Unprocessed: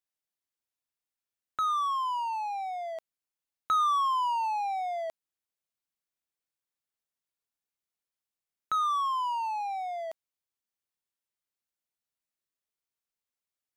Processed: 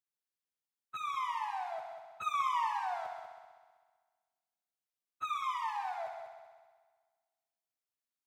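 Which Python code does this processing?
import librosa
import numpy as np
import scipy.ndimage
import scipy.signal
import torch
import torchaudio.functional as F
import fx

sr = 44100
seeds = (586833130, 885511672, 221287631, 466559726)

p1 = np.where(x < 0.0, 10.0 ** (-7.0 / 20.0) * x, x)
p2 = scipy.signal.sosfilt(scipy.signal.butter(4, 93.0, 'highpass', fs=sr, output='sos'), p1)
p3 = fx.stretch_vocoder_free(p2, sr, factor=0.6)
p4 = p3 + fx.echo_heads(p3, sr, ms=64, heads='all three', feedback_pct=54, wet_db=-10.5, dry=0)
y = p4 * librosa.db_to_amplitude(-1.0)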